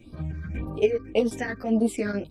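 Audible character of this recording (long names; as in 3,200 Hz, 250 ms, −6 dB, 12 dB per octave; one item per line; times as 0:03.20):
phaser sweep stages 6, 1.8 Hz, lowest notch 740–2,100 Hz
chopped level 6.1 Hz, duty 90%
a shimmering, thickened sound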